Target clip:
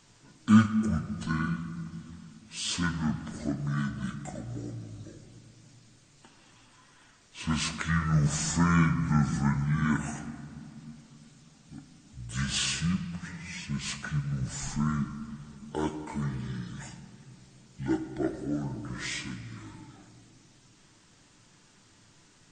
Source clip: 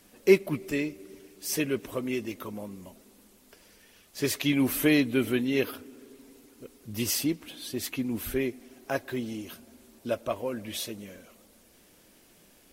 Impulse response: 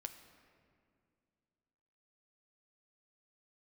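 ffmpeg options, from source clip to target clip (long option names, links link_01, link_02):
-filter_complex "[0:a]asetrate=24916,aresample=44100[link_01];[1:a]atrim=start_sample=2205[link_02];[link_01][link_02]afir=irnorm=-1:irlink=0,volume=3dB"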